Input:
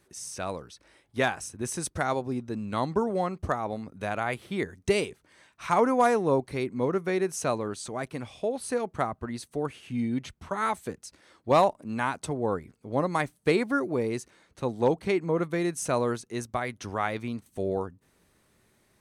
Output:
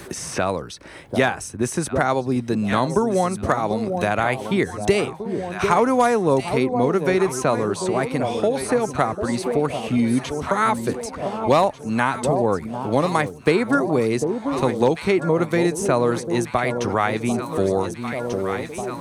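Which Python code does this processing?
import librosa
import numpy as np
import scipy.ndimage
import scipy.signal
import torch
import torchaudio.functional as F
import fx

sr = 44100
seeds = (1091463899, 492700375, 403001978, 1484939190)

p1 = x + fx.echo_alternate(x, sr, ms=745, hz=850.0, feedback_pct=68, wet_db=-10.0, dry=0)
p2 = fx.band_squash(p1, sr, depth_pct=70)
y = p2 * librosa.db_to_amplitude(7.5)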